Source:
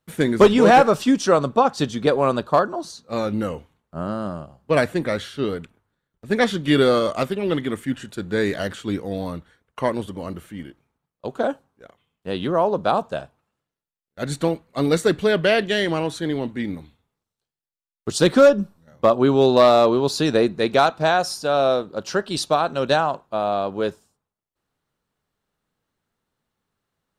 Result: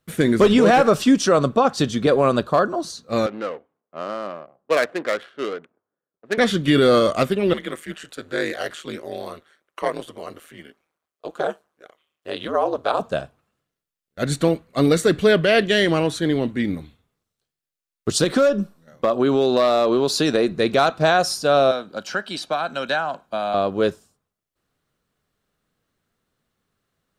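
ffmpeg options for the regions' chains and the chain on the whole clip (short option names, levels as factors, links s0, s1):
-filter_complex "[0:a]asettb=1/sr,asplit=3[s0][s1][s2];[s0]atrim=end=3.264[s3];[s1]atrim=start=3.26:end=6.38,asetpts=PTS-STARTPTS,afade=t=in:d=0.004:c=qsin,afade=t=out:st=3.116:d=0.004:c=qsin,adynamicsmooth=sensitivity=2.5:basefreq=710,highpass=520[s4];[s2]atrim=start=6.376[s5];[s3][s4]acrossfade=d=0.004:c1=hsin:c2=qsin[s6];[s6][s5]acrossfade=d=0.004:c1=qsin:c2=hsin,asettb=1/sr,asplit=3[s7][s8][s9];[s7]atrim=end=7.534[s10];[s8]atrim=start=7.53:end=13,asetpts=PTS-STARTPTS,afade=t=in:d=0.004:c=qsin,afade=t=out:st=5.466:d=0.004:c=qsin,highpass=450,aeval=exprs='val(0)*sin(2*PI*78*n/s)':c=same[s11];[s9]atrim=start=12.996[s12];[s10][s11]acrossfade=d=0.004:c1=hsin:c2=qsin[s13];[s13][s12]acrossfade=d=0.004:c1=qsin:c2=hsin,asettb=1/sr,asplit=3[s14][s15][s16];[s14]atrim=end=18.244[s17];[s15]atrim=start=18.24:end=20.52,asetpts=PTS-STARTPTS,afade=t=in:d=0.004:c=qsin,afade=t=out:st=2.276:d=0.004:c=qsin,equalizer=f=67:w=0.85:g=-15,acompressor=threshold=0.141:ratio=5:attack=3.2:release=140:knee=1:detection=peak[s18];[s16]atrim=start=20.516[s19];[s17][s18]acrossfade=d=0.004:c1=hsin:c2=qsin[s20];[s20][s19]acrossfade=d=0.004:c1=qsin:c2=hsin,asettb=1/sr,asplit=3[s21][s22][s23];[s21]atrim=end=21.714[s24];[s22]atrim=start=21.71:end=23.54,asetpts=PTS-STARTPTS,afade=t=in:d=0.004:c=qsin,afade=t=out:st=1.826:d=0.004:c=qsin,acrossover=split=280|990|2700[s25][s26][s27][s28];[s25]acompressor=threshold=0.00708:ratio=3[s29];[s26]acompressor=threshold=0.0158:ratio=3[s30];[s27]acompressor=threshold=0.0447:ratio=3[s31];[s28]acompressor=threshold=0.00708:ratio=3[s32];[s29][s30][s31][s32]amix=inputs=4:normalize=0,lowshelf=f=170:t=q:w=1.5:g=-7.5,aecho=1:1:1.3:0.43,atrim=end_sample=80703[s33];[s23]atrim=start=23.536[s34];[s24][s33]acrossfade=d=0.004:c1=hsin:c2=qsin[s35];[s35][s34]acrossfade=d=0.004:c1=qsin:c2=hsin,equalizer=f=890:t=o:w=0.25:g=-7.5,alimiter=level_in=3.16:limit=0.891:release=50:level=0:latency=1,volume=0.501"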